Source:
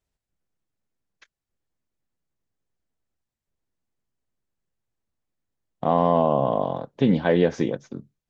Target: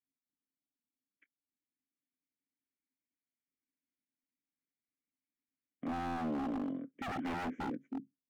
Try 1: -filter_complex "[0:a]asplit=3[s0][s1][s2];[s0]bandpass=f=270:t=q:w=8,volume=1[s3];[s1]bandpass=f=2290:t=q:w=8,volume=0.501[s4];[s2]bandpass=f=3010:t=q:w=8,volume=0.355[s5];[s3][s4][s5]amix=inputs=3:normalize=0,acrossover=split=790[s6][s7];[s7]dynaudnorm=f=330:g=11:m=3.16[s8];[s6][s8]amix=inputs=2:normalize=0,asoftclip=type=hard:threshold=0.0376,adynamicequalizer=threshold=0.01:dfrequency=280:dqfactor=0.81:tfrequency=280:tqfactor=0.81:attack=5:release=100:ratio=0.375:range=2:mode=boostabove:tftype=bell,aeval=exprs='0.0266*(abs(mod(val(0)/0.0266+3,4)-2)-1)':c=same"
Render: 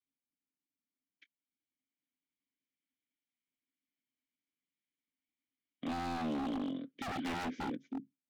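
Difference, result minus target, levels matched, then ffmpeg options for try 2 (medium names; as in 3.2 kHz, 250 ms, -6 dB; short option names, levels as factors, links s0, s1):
4 kHz band +6.0 dB
-filter_complex "[0:a]asplit=3[s0][s1][s2];[s0]bandpass=f=270:t=q:w=8,volume=1[s3];[s1]bandpass=f=2290:t=q:w=8,volume=0.501[s4];[s2]bandpass=f=3010:t=q:w=8,volume=0.355[s5];[s3][s4][s5]amix=inputs=3:normalize=0,acrossover=split=790[s6][s7];[s7]dynaudnorm=f=330:g=11:m=3.16[s8];[s6][s8]amix=inputs=2:normalize=0,asoftclip=type=hard:threshold=0.0376,adynamicequalizer=threshold=0.01:dfrequency=280:dqfactor=0.81:tfrequency=280:tqfactor=0.81:attack=5:release=100:ratio=0.375:range=2:mode=boostabove:tftype=bell,asuperstop=centerf=4400:order=4:qfactor=0.59,aeval=exprs='0.0266*(abs(mod(val(0)/0.0266+3,4)-2)-1)':c=same"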